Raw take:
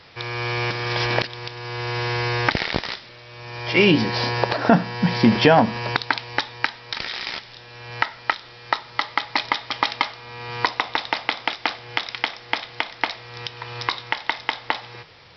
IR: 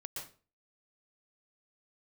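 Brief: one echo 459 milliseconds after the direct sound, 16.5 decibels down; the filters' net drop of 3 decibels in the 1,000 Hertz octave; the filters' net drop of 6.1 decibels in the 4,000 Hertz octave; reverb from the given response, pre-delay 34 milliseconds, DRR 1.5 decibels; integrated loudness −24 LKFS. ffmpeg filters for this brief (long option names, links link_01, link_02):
-filter_complex "[0:a]equalizer=frequency=1000:width_type=o:gain=-3.5,equalizer=frequency=4000:width_type=o:gain=-8,aecho=1:1:459:0.15,asplit=2[link_01][link_02];[1:a]atrim=start_sample=2205,adelay=34[link_03];[link_02][link_03]afir=irnorm=-1:irlink=0,volume=0.5dB[link_04];[link_01][link_04]amix=inputs=2:normalize=0,volume=-1.5dB"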